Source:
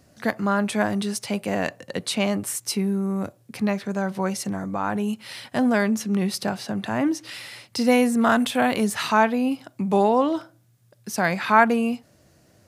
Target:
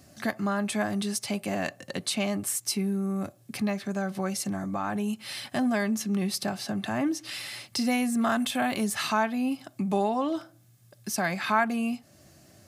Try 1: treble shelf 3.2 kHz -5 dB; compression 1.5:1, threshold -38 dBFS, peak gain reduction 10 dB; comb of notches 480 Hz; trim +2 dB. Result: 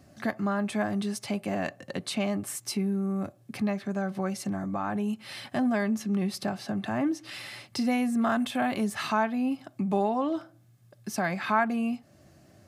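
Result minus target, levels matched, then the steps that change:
8 kHz band -6.5 dB
change: treble shelf 3.2 kHz +5 dB

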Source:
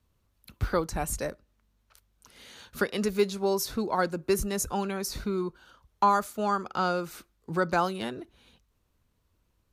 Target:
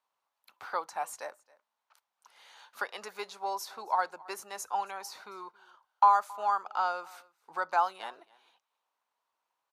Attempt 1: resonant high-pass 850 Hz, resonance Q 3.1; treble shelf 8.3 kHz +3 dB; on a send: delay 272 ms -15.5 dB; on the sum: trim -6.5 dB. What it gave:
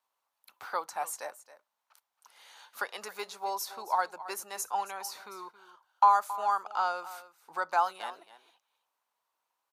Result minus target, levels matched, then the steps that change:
echo-to-direct +8 dB; 8 kHz band +4.5 dB
change: treble shelf 8.3 kHz -7.5 dB; change: delay 272 ms -23.5 dB

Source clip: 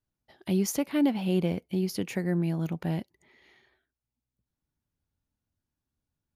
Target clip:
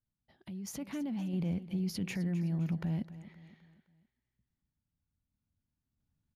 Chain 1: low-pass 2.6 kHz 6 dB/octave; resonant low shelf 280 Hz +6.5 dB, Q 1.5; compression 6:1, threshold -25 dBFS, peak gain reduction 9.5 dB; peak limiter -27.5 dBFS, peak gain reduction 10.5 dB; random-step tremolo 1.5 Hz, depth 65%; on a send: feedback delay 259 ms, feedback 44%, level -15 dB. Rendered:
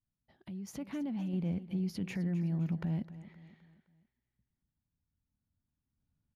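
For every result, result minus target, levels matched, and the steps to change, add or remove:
compression: peak gain reduction +9.5 dB; 4 kHz band -4.5 dB
remove: compression 6:1, threshold -25 dBFS, peak gain reduction 9.5 dB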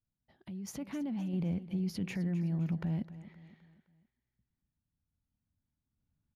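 4 kHz band -3.0 dB
change: low-pass 5.6 kHz 6 dB/octave

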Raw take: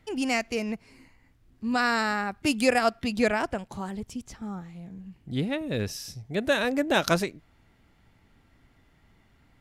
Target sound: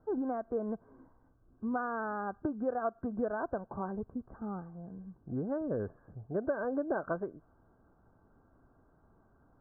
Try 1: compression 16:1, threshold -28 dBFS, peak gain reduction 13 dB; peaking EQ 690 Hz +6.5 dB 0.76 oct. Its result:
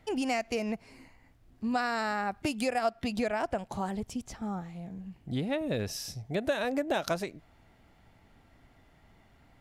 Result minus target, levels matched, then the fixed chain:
2 kHz band +4.5 dB
compression 16:1, threshold -28 dBFS, peak gain reduction 13 dB; rippled Chebyshev low-pass 1.6 kHz, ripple 6 dB; peaking EQ 690 Hz +6.5 dB 0.76 oct

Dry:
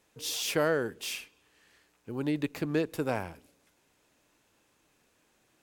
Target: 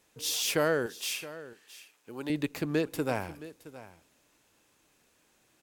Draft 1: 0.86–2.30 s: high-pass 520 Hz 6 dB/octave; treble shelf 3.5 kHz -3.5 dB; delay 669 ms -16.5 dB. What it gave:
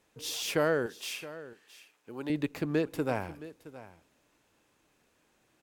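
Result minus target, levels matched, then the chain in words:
8 kHz band -5.0 dB
0.86–2.30 s: high-pass 520 Hz 6 dB/octave; treble shelf 3.5 kHz +4 dB; delay 669 ms -16.5 dB

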